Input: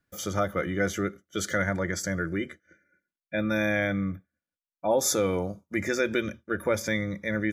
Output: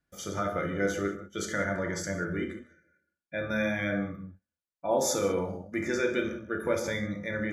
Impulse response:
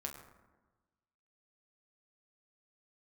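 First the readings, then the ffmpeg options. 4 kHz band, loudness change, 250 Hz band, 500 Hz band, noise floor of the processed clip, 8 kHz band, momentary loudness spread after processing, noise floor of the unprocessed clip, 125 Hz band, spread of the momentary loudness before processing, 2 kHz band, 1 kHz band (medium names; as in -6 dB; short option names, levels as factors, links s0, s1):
-3.5 dB, -2.5 dB, -3.0 dB, -1.5 dB, under -85 dBFS, -4.0 dB, 9 LU, under -85 dBFS, -4.0 dB, 8 LU, -3.0 dB, -1.5 dB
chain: -filter_complex "[0:a]lowpass=11000[s0];[1:a]atrim=start_sample=2205,atrim=end_sample=6174,asetrate=30429,aresample=44100[s1];[s0][s1]afir=irnorm=-1:irlink=0,volume=0.708"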